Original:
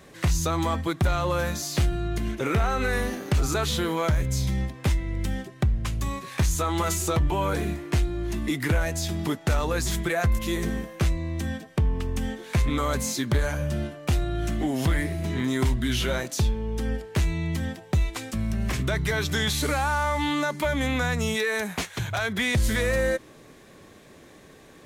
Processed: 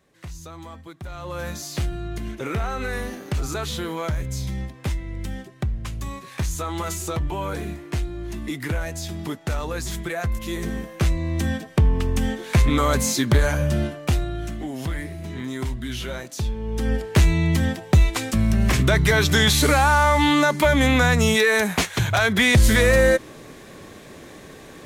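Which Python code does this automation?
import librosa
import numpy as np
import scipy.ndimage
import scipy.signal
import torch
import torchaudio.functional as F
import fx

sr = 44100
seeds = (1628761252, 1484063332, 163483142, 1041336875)

y = fx.gain(x, sr, db=fx.line((1.02, -14.0), (1.49, -2.5), (10.39, -2.5), (11.41, 6.0), (13.9, 6.0), (14.59, -4.5), (16.33, -4.5), (17.05, 8.0)))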